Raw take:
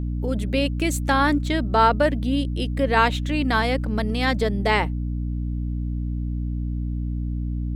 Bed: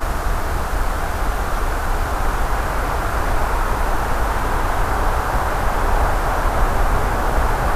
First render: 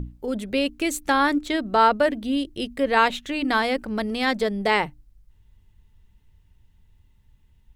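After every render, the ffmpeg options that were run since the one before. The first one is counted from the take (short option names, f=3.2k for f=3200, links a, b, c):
-af "bandreject=f=60:t=h:w=6,bandreject=f=120:t=h:w=6,bandreject=f=180:t=h:w=6,bandreject=f=240:t=h:w=6,bandreject=f=300:t=h:w=6"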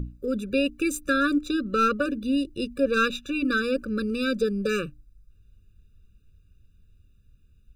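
-af "aeval=exprs='clip(val(0),-1,0.237)':c=same,afftfilt=real='re*eq(mod(floor(b*sr/1024/580),2),0)':imag='im*eq(mod(floor(b*sr/1024/580),2),0)':win_size=1024:overlap=0.75"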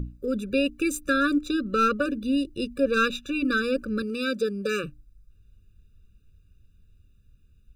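-filter_complex "[0:a]asettb=1/sr,asplit=3[a][b][c];[a]atrim=end=4.024[d];[b]atrim=start=4.02:end=4.84,asetpts=PTS-STARTPTS,afade=t=in:d=0.004:c=qsin,afade=t=out:st=0.816:d=0.004:c=qsin,highpass=f=260:p=1[e];[c]atrim=start=4.836[f];[d][e]acrossfade=d=0.004:c1=hsin:c2=qsin[g];[g][f]acrossfade=d=0.004:c1=qsin:c2=hsin"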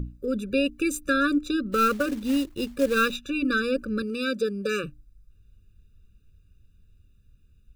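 -filter_complex "[0:a]asettb=1/sr,asplit=3[a][b][c];[a]atrim=end=1.724[d];[b]atrim=start=1.72:end=3.16,asetpts=PTS-STARTPTS,afade=t=in:d=0.004:c=qsin,afade=t=out:st=1.436:d=0.004:c=qsin,acrusher=bits=4:mode=log:mix=0:aa=0.000001[e];[c]atrim=start=3.156[f];[d][e]acrossfade=d=0.004:c1=hsin:c2=qsin[g];[g][f]acrossfade=d=0.004:c1=qsin:c2=hsin"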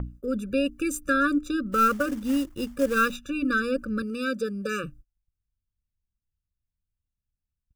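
-af "agate=range=-28dB:threshold=-45dB:ratio=16:detection=peak,equalizer=f=400:t=o:w=0.33:g=-7,equalizer=f=1.25k:t=o:w=0.33:g=3,equalizer=f=2.5k:t=o:w=0.33:g=-5,equalizer=f=4k:t=o:w=0.33:g=-9"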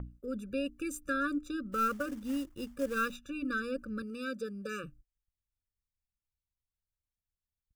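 -af "volume=-9.5dB"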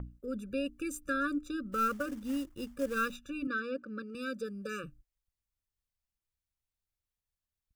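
-filter_complex "[0:a]asettb=1/sr,asplit=3[a][b][c];[a]atrim=end=3.474[d];[b]atrim=start=3.47:end=4.15,asetpts=PTS-STARTPTS,afade=t=in:d=0.004:c=qsin,afade=t=out:st=0.676:d=0.004:c=qsin,highpass=230,lowpass=4.3k[e];[c]atrim=start=4.146[f];[d][e]acrossfade=d=0.004:c1=hsin:c2=qsin[g];[g][f]acrossfade=d=0.004:c1=qsin:c2=hsin"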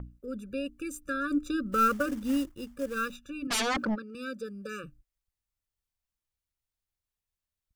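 -filter_complex "[0:a]asplit=3[a][b][c];[a]afade=t=out:st=1.3:d=0.02[d];[b]acontrast=59,afade=t=in:st=1.3:d=0.02,afade=t=out:st=2.5:d=0.02[e];[c]afade=t=in:st=2.5:d=0.02[f];[d][e][f]amix=inputs=3:normalize=0,asplit=3[g][h][i];[g]afade=t=out:st=3.5:d=0.02[j];[h]aeval=exprs='0.0562*sin(PI/2*5.62*val(0)/0.0562)':c=same,afade=t=in:st=3.5:d=0.02,afade=t=out:st=3.94:d=0.02[k];[i]afade=t=in:st=3.94:d=0.02[l];[j][k][l]amix=inputs=3:normalize=0"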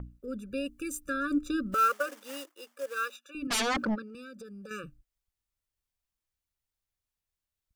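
-filter_complex "[0:a]asettb=1/sr,asplit=3[a][b][c];[a]atrim=end=0.534[d];[b]atrim=start=0.53:end=1.09,asetpts=PTS-STARTPTS,afade=t=in:d=0.004:c=qsin,afade=t=out:st=0.556:d=0.004:c=qsin,highshelf=f=4.8k:g=6[e];[c]atrim=start=1.086[f];[d][e]acrossfade=d=0.004:c1=hsin:c2=qsin[g];[g][f]acrossfade=d=0.004:c1=qsin:c2=hsin,asettb=1/sr,asplit=3[h][i][j];[h]atrim=end=1.744[k];[i]atrim=start=1.74:end=3.35,asetpts=PTS-STARTPTS,afade=t=in:d=0.004:c=qsin,afade=t=out:st=1.606:d=0.004:c=qsin,highpass=f=480:w=0.5412,highpass=f=480:w=1.3066[l];[j]atrim=start=3.346[m];[k][l]acrossfade=d=0.004:c1=hsin:c2=qsin[n];[n][m]acrossfade=d=0.004:c1=qsin:c2=hsin,asettb=1/sr,asplit=3[o][p][q];[o]atrim=end=4.074[r];[p]atrim=start=4.07:end=4.71,asetpts=PTS-STARTPTS,afade=t=in:d=0.004:c=qsin,afade=t=out:st=0.636:d=0.004:c=qsin,acompressor=threshold=-42dB:ratio=6:attack=3.2:release=140:knee=1:detection=peak[s];[q]atrim=start=4.706[t];[r][s]acrossfade=d=0.004:c1=hsin:c2=qsin[u];[u][t]acrossfade=d=0.004:c1=qsin:c2=hsin"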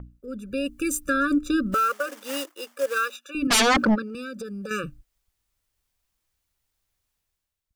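-af "alimiter=level_in=2dB:limit=-24dB:level=0:latency=1:release=358,volume=-2dB,dynaudnorm=f=120:g=9:m=11dB"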